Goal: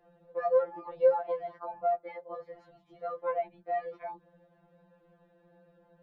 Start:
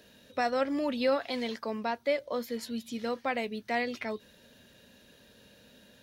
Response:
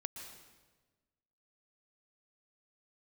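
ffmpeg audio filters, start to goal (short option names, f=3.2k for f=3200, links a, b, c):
-af "lowpass=f=870:t=q:w=1.8,afftfilt=real='re*2.83*eq(mod(b,8),0)':imag='im*2.83*eq(mod(b,8),0)':win_size=2048:overlap=0.75"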